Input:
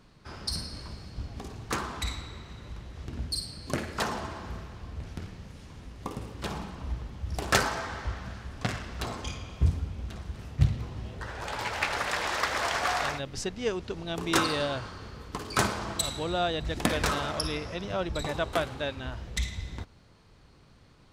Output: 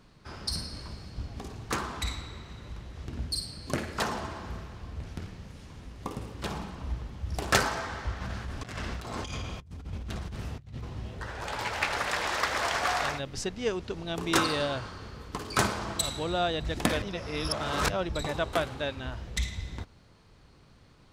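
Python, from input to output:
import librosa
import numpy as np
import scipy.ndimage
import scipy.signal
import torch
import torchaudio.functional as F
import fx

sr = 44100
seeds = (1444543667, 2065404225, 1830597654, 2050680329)

y = fx.over_compress(x, sr, threshold_db=-39.0, ratio=-1.0, at=(8.2, 10.82), fade=0.02)
y = fx.edit(y, sr, fx.reverse_span(start_s=17.02, length_s=0.88), tone=tone)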